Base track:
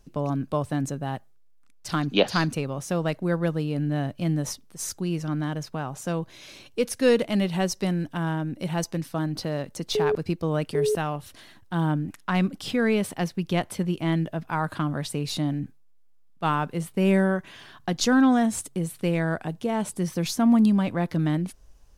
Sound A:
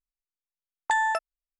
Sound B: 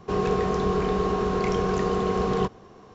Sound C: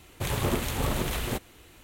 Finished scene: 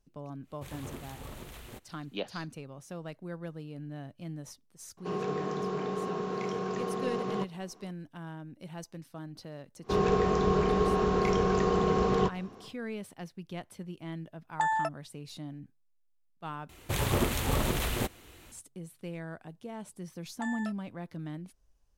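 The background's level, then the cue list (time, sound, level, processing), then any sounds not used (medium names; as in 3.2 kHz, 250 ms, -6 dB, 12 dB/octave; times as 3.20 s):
base track -15.5 dB
0.41 s: add C -16.5 dB, fades 0.10 s
4.97 s: add B -9 dB + high-pass 130 Hz 24 dB/octave
9.81 s: add B -2 dB, fades 0.10 s
13.70 s: add A -9 dB + peaking EQ 770 Hz +7.5 dB 0.82 oct
16.69 s: replace with C -0.5 dB
19.51 s: add A -15.5 dB + doubling 29 ms -9 dB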